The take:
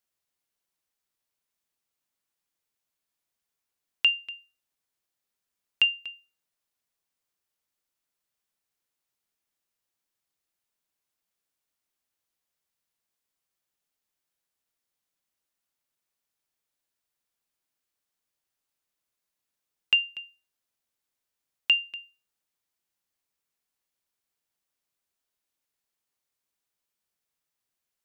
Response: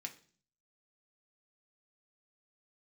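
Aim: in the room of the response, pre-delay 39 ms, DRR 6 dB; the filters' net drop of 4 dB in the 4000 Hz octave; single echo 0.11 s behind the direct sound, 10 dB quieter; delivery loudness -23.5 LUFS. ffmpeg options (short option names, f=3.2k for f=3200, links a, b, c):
-filter_complex "[0:a]equalizer=f=4k:t=o:g=-8,aecho=1:1:110:0.316,asplit=2[a][b];[1:a]atrim=start_sample=2205,adelay=39[c];[b][c]afir=irnorm=-1:irlink=0,volume=-3.5dB[d];[a][d]amix=inputs=2:normalize=0,volume=2dB"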